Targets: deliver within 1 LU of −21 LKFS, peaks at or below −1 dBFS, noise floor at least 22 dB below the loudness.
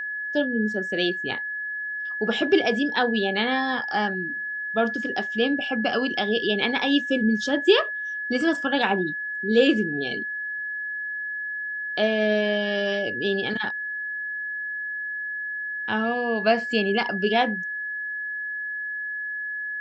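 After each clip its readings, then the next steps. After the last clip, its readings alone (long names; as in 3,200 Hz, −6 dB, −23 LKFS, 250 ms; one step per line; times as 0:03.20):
interfering tone 1,700 Hz; level of the tone −28 dBFS; integrated loudness −24.5 LKFS; sample peak −5.0 dBFS; target loudness −21.0 LKFS
→ notch filter 1,700 Hz, Q 30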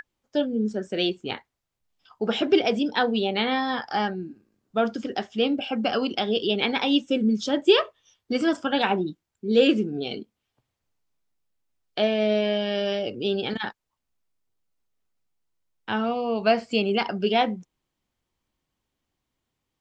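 interfering tone none found; integrated loudness −24.5 LKFS; sample peak −5.5 dBFS; target loudness −21.0 LKFS
→ level +3.5 dB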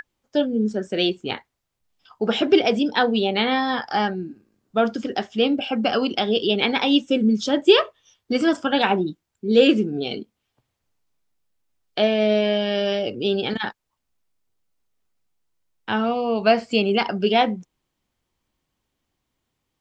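integrated loudness −21.0 LKFS; sample peak −2.0 dBFS; background noise floor −79 dBFS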